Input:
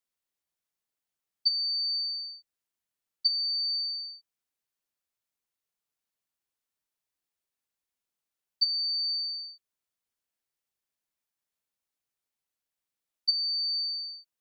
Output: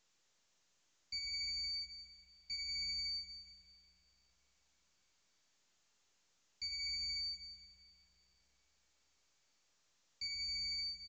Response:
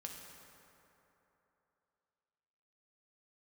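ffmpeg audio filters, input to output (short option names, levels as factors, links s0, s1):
-filter_complex "[0:a]aemphasis=mode=production:type=75kf,alimiter=limit=0.237:level=0:latency=1:release=326,aresample=16000,asoftclip=type=tanh:threshold=0.0126,aresample=44100,atempo=1.3,aecho=1:1:22|46|70:0.266|0.335|0.178[s0];[1:a]atrim=start_sample=2205[s1];[s0][s1]afir=irnorm=-1:irlink=0,volume=1.26" -ar 16000 -c:a pcm_mulaw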